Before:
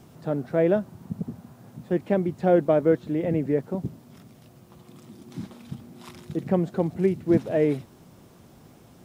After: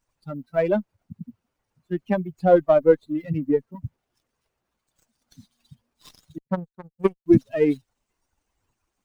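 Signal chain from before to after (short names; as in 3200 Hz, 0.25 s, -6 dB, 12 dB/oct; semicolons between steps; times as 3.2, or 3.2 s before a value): per-bin expansion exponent 3; 6.38–7.26 power-law curve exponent 2; running maximum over 3 samples; gain +8 dB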